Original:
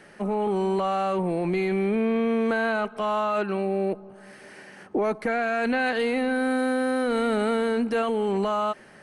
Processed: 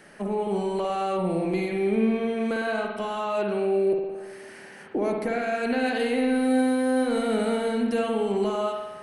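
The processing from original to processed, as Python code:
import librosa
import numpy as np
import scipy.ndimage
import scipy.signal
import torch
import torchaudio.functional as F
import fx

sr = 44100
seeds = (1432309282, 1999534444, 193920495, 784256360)

y = fx.high_shelf(x, sr, hz=8100.0, db=8.5)
y = fx.rev_spring(y, sr, rt60_s=1.1, pass_ms=(54,), chirp_ms=20, drr_db=1.5)
y = fx.dynamic_eq(y, sr, hz=1300.0, q=0.93, threshold_db=-37.0, ratio=4.0, max_db=-6)
y = y * librosa.db_to_amplitude(-1.5)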